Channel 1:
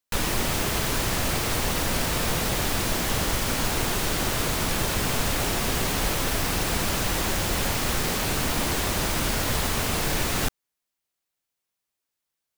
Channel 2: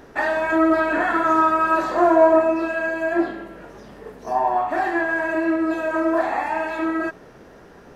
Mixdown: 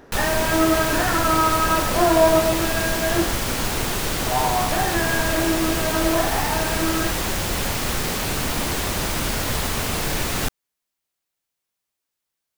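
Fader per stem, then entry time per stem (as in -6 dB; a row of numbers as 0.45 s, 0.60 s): +1.5 dB, -2.0 dB; 0.00 s, 0.00 s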